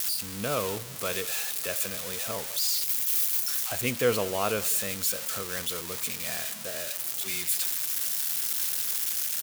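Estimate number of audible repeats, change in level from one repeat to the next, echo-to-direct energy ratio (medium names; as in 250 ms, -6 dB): 2, -6.5 dB, -19.5 dB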